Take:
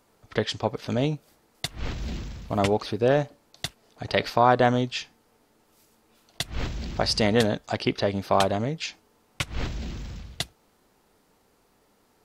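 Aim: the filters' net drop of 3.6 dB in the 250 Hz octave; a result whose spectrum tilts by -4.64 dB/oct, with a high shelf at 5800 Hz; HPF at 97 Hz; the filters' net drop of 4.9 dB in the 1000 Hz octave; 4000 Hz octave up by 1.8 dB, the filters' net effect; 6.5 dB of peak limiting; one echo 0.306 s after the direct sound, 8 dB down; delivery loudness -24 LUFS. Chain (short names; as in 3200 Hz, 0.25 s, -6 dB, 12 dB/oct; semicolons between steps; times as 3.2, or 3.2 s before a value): HPF 97 Hz; bell 250 Hz -4 dB; bell 1000 Hz -7 dB; bell 4000 Hz +4.5 dB; high shelf 5800 Hz -5 dB; limiter -13 dBFS; echo 0.306 s -8 dB; gain +5.5 dB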